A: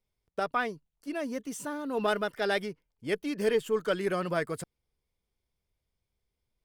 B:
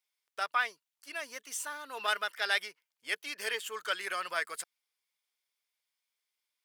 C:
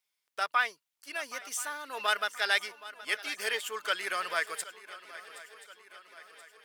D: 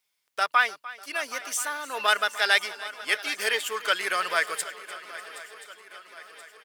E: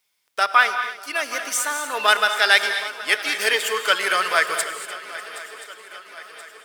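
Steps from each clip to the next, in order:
HPF 1400 Hz 12 dB/oct; gain +4.5 dB
swung echo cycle 1.028 s, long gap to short 3:1, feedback 53%, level -17 dB; gain +2.5 dB
feedback echo 0.298 s, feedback 55%, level -18 dB; gain +6 dB
non-linear reverb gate 0.26 s rising, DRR 8.5 dB; gain +5.5 dB

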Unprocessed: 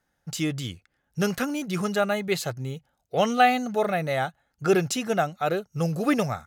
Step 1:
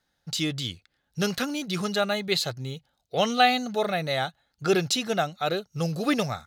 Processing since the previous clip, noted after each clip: bell 4000 Hz +12 dB 0.77 oct; gain -2 dB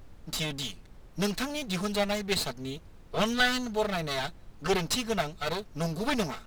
minimum comb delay 4.6 ms; added noise brown -46 dBFS; gain -2 dB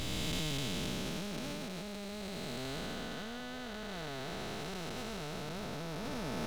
time blur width 1.03 s; negative-ratio compressor -43 dBFS, ratio -1; gain +3 dB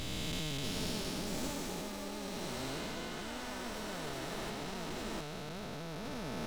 echoes that change speed 0.633 s, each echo +6 st, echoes 2; gain -2 dB

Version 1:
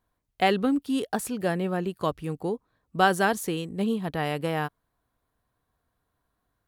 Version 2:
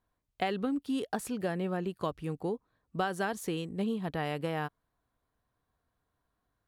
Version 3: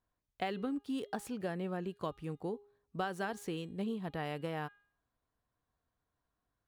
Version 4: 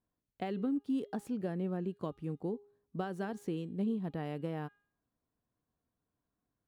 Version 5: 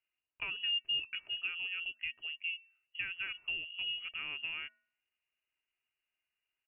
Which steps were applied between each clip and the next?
high shelf 9400 Hz -7 dB; compressor 6:1, threshold -24 dBFS, peak gain reduction 9.5 dB; gain -3.5 dB
median filter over 3 samples; de-hum 409.1 Hz, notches 10; gain -5 dB
bell 230 Hz +12 dB 2.6 oct; gain -7.5 dB
HPF 270 Hz 12 dB/oct; comb 3.3 ms, depth 32%; inverted band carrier 3100 Hz

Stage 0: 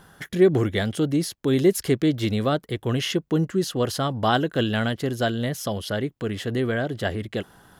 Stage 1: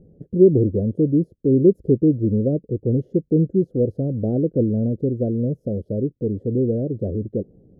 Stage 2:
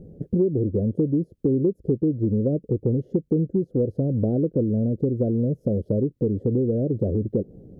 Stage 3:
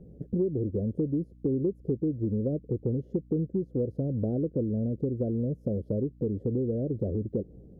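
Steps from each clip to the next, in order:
elliptic low-pass 520 Hz, stop band 50 dB; gain +5 dB
compressor 6:1, threshold -26 dBFS, peak gain reduction 17 dB; gain +6.5 dB
hum 60 Hz, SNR 24 dB; gain -6.5 dB

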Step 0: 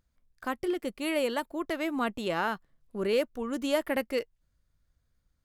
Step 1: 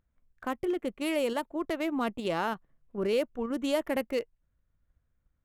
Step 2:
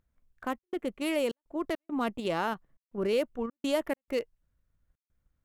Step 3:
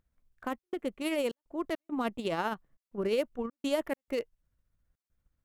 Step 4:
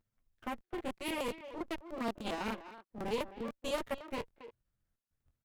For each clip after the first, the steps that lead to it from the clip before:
Wiener smoothing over 9 samples; in parallel at -1 dB: level quantiser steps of 17 dB; on the sum: dynamic EQ 1600 Hz, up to -4 dB, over -41 dBFS, Q 1.7; gain -3 dB
step gate "xxxx.xxxx.xx.xx" 103 bpm -60 dB
tremolo 15 Hz, depth 38%
minimum comb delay 8.8 ms; speakerphone echo 0.26 s, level -12 dB; crackling interface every 0.10 s, samples 1024, repeat, from 0.56; gain -4.5 dB

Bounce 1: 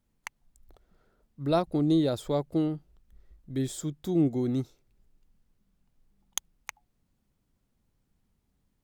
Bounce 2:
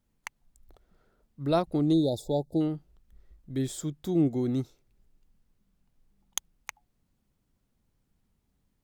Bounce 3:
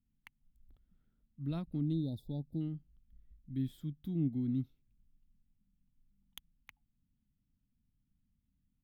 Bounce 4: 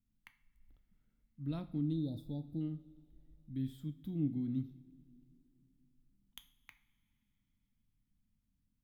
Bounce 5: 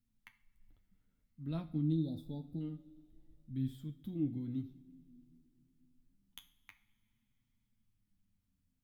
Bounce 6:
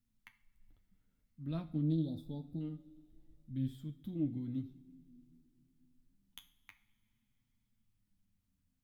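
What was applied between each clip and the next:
spectral delete 1.93–2.61, 890–3400 Hz
EQ curve 260 Hz 0 dB, 380 Hz -17 dB, 650 Hz -20 dB, 3200 Hz -8 dB, 7300 Hz -29 dB, 12000 Hz -9 dB; gain -4.5 dB
two-slope reverb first 0.43 s, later 3.5 s, from -20 dB, DRR 8.5 dB; gain -2 dB
flange 0.27 Hz, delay 8.1 ms, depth 4.8 ms, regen +29%; gain +4 dB
Doppler distortion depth 0.11 ms

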